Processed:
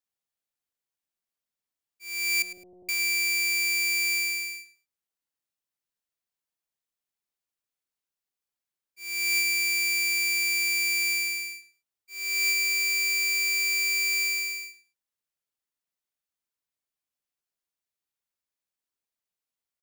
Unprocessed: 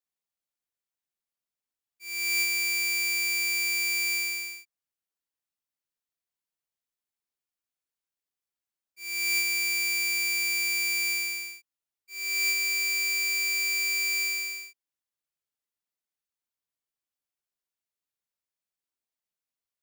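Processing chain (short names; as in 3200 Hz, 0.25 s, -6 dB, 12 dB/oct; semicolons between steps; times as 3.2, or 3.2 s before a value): 2.42–2.89 steep low-pass 700 Hz 48 dB/oct; on a send: feedback echo 0.106 s, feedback 19%, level -14 dB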